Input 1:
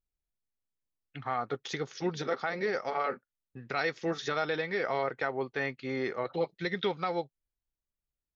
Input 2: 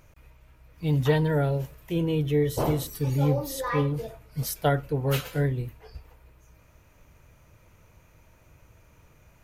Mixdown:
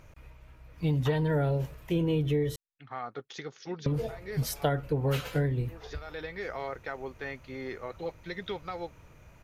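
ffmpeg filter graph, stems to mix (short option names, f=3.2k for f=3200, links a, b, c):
-filter_complex "[0:a]adelay=1650,volume=-5.5dB[a];[1:a]highshelf=f=7.9k:g=-9.5,volume=2.5dB,asplit=3[b][c][d];[b]atrim=end=2.56,asetpts=PTS-STARTPTS,afade=t=out:st=2.556:d=0.004:c=hsin[e];[c]atrim=start=2.56:end=3.86,asetpts=PTS-STARTPTS,volume=0[f];[d]atrim=start=3.86,asetpts=PTS-STARTPTS,afade=t=in:d=0.004:c=hsin[g];[e][f][g]concat=n=3:v=0:a=1,asplit=2[h][i];[i]apad=whole_len=441130[j];[a][j]sidechaincompress=threshold=-44dB:ratio=8:attack=7.1:release=257[k];[k][h]amix=inputs=2:normalize=0,acompressor=threshold=-24dB:ratio=6"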